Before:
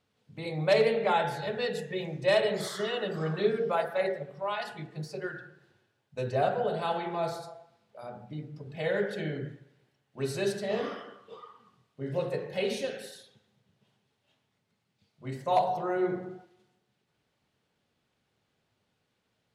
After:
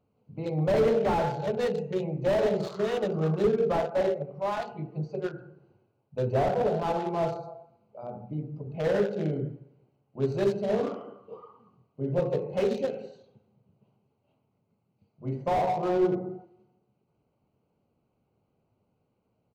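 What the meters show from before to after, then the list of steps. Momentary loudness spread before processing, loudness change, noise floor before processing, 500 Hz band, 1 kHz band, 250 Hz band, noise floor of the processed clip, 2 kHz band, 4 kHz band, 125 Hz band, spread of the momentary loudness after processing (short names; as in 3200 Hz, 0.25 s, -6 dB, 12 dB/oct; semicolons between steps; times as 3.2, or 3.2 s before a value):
18 LU, +2.5 dB, -78 dBFS, +3.0 dB, +0.5 dB, +5.5 dB, -75 dBFS, -5.0 dB, -6.5 dB, +5.5 dB, 16 LU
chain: Wiener smoothing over 25 samples; downsampling 16000 Hz; slew limiter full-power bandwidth 26 Hz; gain +5.5 dB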